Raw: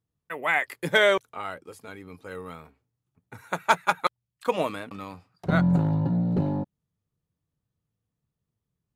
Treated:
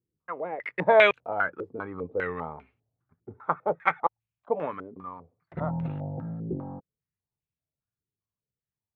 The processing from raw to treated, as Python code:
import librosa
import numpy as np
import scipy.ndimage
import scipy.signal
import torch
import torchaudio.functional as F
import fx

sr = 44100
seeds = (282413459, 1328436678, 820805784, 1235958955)

y = fx.doppler_pass(x, sr, speed_mps=22, closest_m=15.0, pass_at_s=1.96)
y = fx.filter_held_lowpass(y, sr, hz=5.0, low_hz=380.0, high_hz=2600.0)
y = F.gain(torch.from_numpy(y), 4.5).numpy()